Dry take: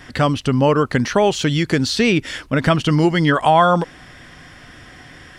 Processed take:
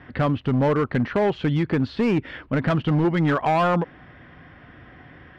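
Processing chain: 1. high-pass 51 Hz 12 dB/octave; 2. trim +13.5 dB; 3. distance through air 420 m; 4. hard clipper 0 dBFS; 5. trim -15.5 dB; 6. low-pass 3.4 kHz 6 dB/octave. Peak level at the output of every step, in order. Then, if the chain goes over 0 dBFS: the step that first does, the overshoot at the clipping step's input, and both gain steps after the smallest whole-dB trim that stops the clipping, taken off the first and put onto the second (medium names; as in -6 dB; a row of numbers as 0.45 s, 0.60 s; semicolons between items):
-2.5 dBFS, +11.0 dBFS, +9.0 dBFS, 0.0 dBFS, -15.5 dBFS, -15.5 dBFS; step 2, 9.0 dB; step 2 +4.5 dB, step 5 -6.5 dB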